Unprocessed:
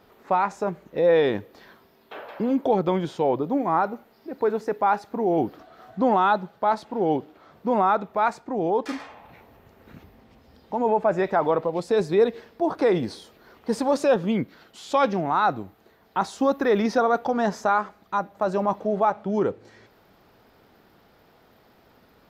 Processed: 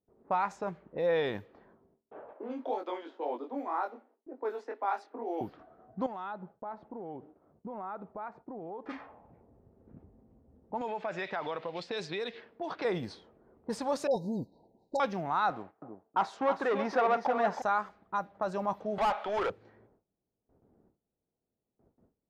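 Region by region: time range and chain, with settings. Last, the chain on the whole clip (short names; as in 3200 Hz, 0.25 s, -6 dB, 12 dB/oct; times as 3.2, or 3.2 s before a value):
2.33–5.41 steep high-pass 240 Hz 96 dB/oct + chorus 2 Hz, delay 20 ms, depth 4.6 ms
6.06–8.87 expander -50 dBFS + compressor 3:1, threshold -33 dBFS
10.81–12.85 weighting filter D + compressor 4:1, threshold -22 dBFS
14.07–15 brick-wall FIR band-stop 1000–3700 Hz + dispersion highs, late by 41 ms, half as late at 1200 Hz
15.5–17.62 sample leveller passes 2 + band-pass 830 Hz, Q 0.65 + feedback echo 0.319 s, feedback 22%, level -8 dB
18.98–19.5 Bessel high-pass 690 Hz + bell 3200 Hz +8 dB 1 oct + overdrive pedal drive 27 dB, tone 1200 Hz, clips at -11.5 dBFS
whole clip: low-pass opened by the level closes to 430 Hz, open at -20.5 dBFS; gate with hold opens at -50 dBFS; dynamic EQ 320 Hz, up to -6 dB, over -35 dBFS, Q 0.86; gain -6.5 dB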